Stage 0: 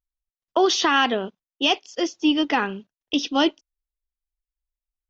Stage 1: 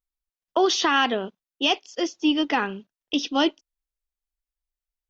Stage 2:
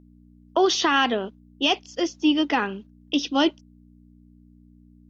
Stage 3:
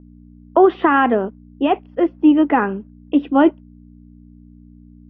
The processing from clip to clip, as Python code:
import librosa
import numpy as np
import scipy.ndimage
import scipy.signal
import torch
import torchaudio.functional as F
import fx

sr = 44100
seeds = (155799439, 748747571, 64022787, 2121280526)

y1 = fx.peak_eq(x, sr, hz=86.0, db=-7.0, octaves=0.7)
y1 = F.gain(torch.from_numpy(y1), -1.5).numpy()
y2 = fx.add_hum(y1, sr, base_hz=60, snr_db=21)
y2 = fx.low_shelf_res(y2, sr, hz=160.0, db=-7.0, q=1.5)
y3 = scipy.signal.sosfilt(scipy.signal.bessel(6, 1300.0, 'lowpass', norm='mag', fs=sr, output='sos'), y2)
y3 = F.gain(torch.from_numpy(y3), 8.5).numpy()